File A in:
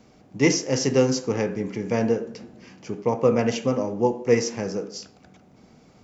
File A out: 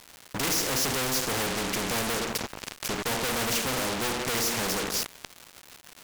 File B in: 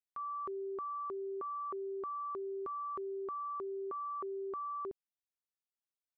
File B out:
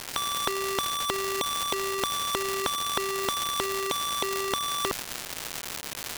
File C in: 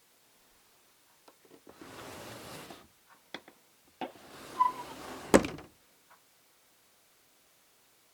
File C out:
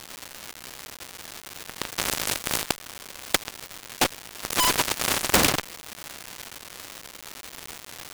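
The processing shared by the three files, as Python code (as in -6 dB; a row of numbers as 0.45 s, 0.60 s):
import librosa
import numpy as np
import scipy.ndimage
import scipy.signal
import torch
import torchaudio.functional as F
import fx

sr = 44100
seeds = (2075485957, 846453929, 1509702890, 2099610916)

y = fx.fuzz(x, sr, gain_db=39.0, gate_db=-40.0)
y = fx.dmg_crackle(y, sr, seeds[0], per_s=380.0, level_db=-36.0)
y = fx.spectral_comp(y, sr, ratio=2.0)
y = y * 10.0 ** (-30 / 20.0) / np.sqrt(np.mean(np.square(y)))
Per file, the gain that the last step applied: -2.0 dB, +9.5 dB, +9.5 dB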